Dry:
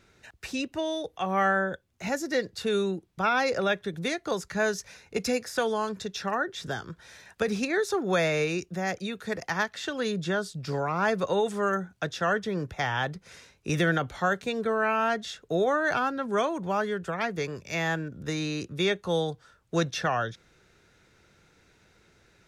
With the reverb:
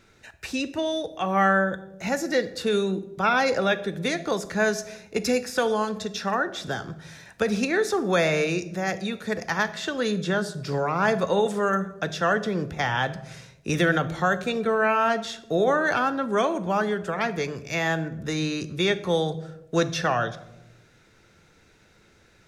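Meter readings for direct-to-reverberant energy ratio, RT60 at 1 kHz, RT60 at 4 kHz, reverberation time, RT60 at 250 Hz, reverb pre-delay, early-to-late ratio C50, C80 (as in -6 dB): 11.5 dB, 0.80 s, 0.55 s, 0.95 s, 1.4 s, 3 ms, 14.5 dB, 17.5 dB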